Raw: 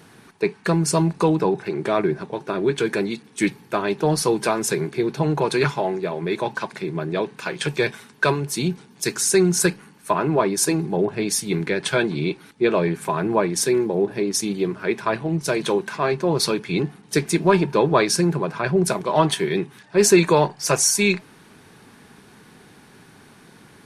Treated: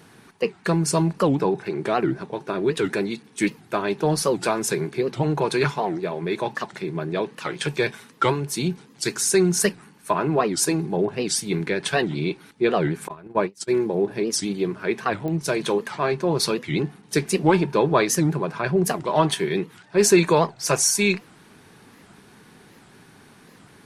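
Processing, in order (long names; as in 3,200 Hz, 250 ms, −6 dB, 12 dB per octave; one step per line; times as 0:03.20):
0:13.08–0:13.71: noise gate −19 dBFS, range −32 dB
digital clicks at 0:15.28, −18 dBFS
wow of a warped record 78 rpm, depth 250 cents
level −1.5 dB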